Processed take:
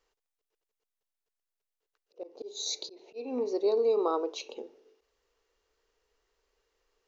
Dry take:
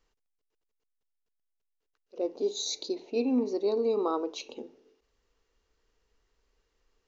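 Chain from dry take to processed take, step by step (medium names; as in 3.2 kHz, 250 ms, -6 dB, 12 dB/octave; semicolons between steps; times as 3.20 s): slow attack 255 ms; resonant low shelf 310 Hz -8.5 dB, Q 1.5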